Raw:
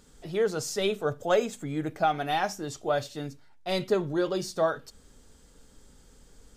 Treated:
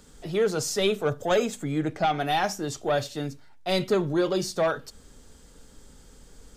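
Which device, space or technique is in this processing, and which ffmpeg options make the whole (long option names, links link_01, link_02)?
one-band saturation: -filter_complex "[0:a]asettb=1/sr,asplit=3[link_01][link_02][link_03];[link_01]atrim=end=1.784[link_04];[link_02]atrim=start=1.78:end=2.2,asetpts=PTS-STARTPTS,afade=type=in:duration=0.004:curve=qsin,afade=type=out:start_time=0.416:duration=0.004:curve=qsin,lowpass=8300[link_05];[link_03]atrim=start=2.196[link_06];[link_04][link_05]acrossfade=duration=0.004:curve1=hsin:curve2=qsin[link_07];[link_07][link_06]acrossfade=duration=0.004:curve1=qsin:curve2=hsin,acrossover=split=280|2200[link_08][link_09][link_10];[link_09]asoftclip=type=tanh:threshold=-23.5dB[link_11];[link_08][link_11][link_10]amix=inputs=3:normalize=0,volume=4.5dB"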